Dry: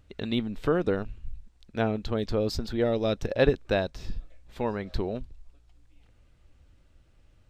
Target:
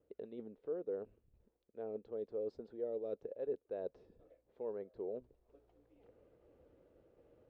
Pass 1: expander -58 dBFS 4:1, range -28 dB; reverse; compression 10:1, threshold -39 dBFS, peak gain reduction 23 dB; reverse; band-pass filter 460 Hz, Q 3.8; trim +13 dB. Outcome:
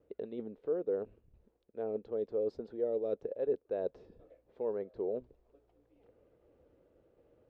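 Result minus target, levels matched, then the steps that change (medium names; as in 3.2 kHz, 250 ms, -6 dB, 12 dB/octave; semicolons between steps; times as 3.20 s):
compression: peak gain reduction -7 dB
change: compression 10:1, threshold -46.5 dBFS, peak gain reduction 30 dB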